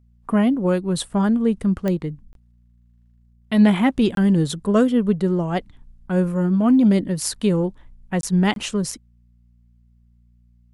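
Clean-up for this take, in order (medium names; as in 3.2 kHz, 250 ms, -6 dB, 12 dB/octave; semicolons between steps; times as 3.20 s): de-click; de-hum 59.1 Hz, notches 4; interpolate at 2.33/4.15/8.21/8.54 s, 22 ms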